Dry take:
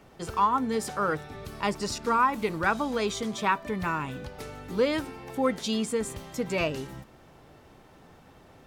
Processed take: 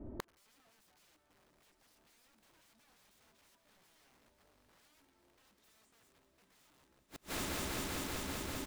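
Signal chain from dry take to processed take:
low-pass that shuts in the quiet parts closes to 300 Hz, open at −23.5 dBFS
comb filter 3.2 ms, depth 87%
downward compressor 3 to 1, threshold −33 dBFS, peak gain reduction 13.5 dB
wrap-around overflow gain 35 dB
on a send: echo that builds up and dies away 195 ms, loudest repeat 5, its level −16 dB
on the sum: gate with flip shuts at −35 dBFS, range −38 dB
level +8 dB

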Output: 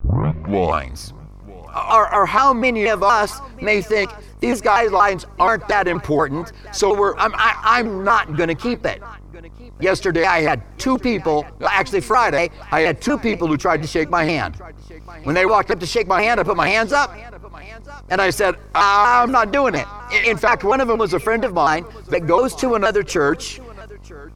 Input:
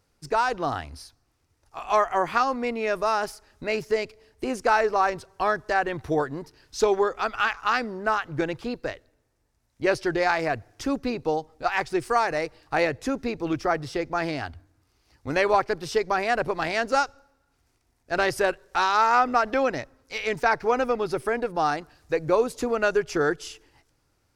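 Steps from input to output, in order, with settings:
turntable start at the beginning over 0.95 s
in parallel at −1.5 dB: compressor whose output falls as the input rises −26 dBFS, ratio −1
on the sum: hum with harmonics 50 Hz, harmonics 28, −42 dBFS −8 dB per octave
hollow resonant body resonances 1,100/2,200 Hz, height 10 dB, ringing for 30 ms
on a send: single-tap delay 950 ms −22.5 dB
on the sum: pitch modulation by a square or saw wave saw down 4.2 Hz, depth 160 cents
level +3 dB

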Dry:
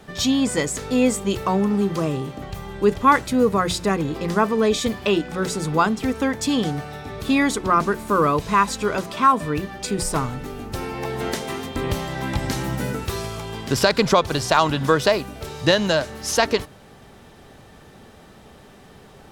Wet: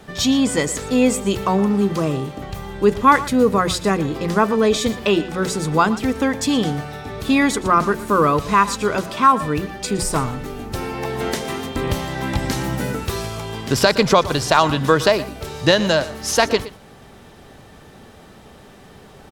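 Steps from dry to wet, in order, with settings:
single-tap delay 118 ms −16.5 dB
level +2.5 dB

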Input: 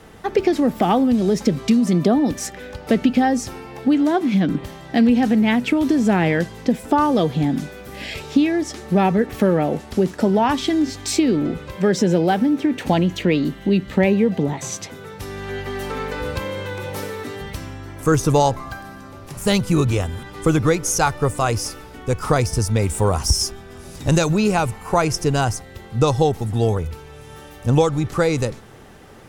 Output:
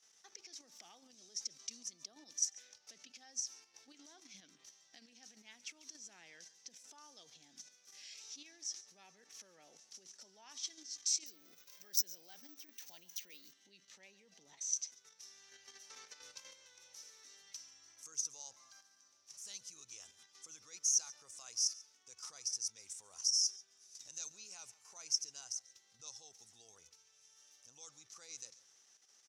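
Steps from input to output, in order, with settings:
brickwall limiter −13.5 dBFS, peak gain reduction 8 dB
output level in coarse steps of 9 dB
resonant band-pass 5,900 Hz, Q 7
slap from a distant wall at 24 metres, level −19 dB
0:11.26–0:13.53: bad sample-rate conversion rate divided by 2×, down none, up zero stuff
level +1.5 dB

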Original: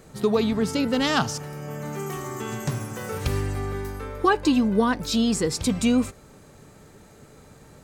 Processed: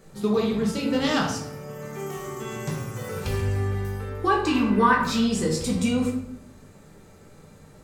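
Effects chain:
0:04.46–0:05.21: flat-topped bell 1,500 Hz +10.5 dB
rectangular room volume 140 cubic metres, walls mixed, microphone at 1.2 metres
level −6 dB

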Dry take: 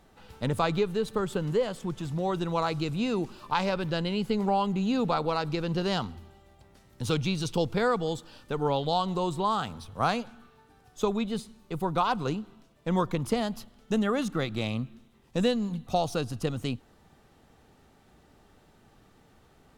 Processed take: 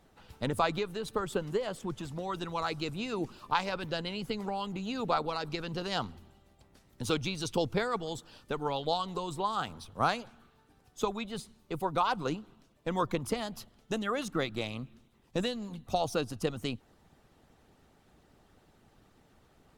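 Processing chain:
harmonic and percussive parts rebalanced harmonic −10 dB

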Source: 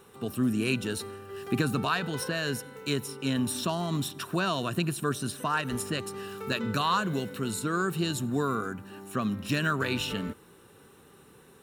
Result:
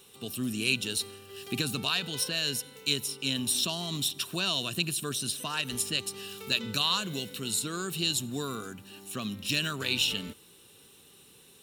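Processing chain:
high shelf with overshoot 2,200 Hz +11.5 dB, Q 1.5
level −6 dB

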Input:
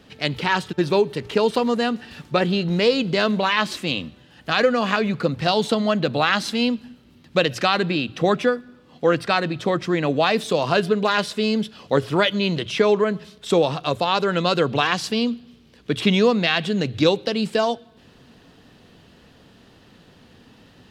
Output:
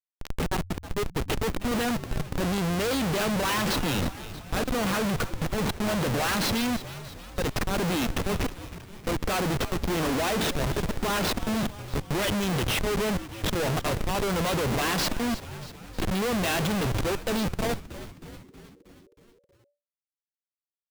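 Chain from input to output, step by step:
volume swells 369 ms
comparator with hysteresis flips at −31.5 dBFS
echo with shifted repeats 317 ms, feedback 60%, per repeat −97 Hz, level −14 dB

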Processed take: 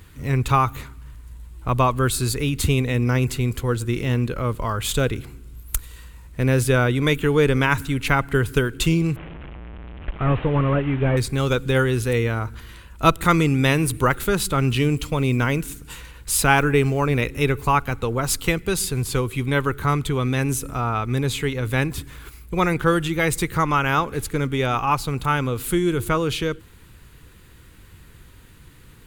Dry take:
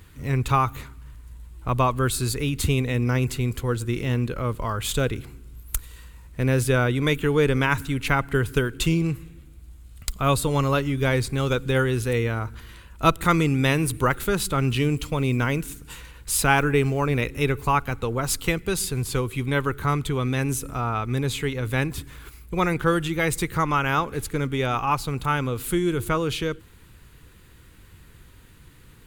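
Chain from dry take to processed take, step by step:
0:09.16–0:11.17: linear delta modulator 16 kbit/s, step −33 dBFS
level +2.5 dB

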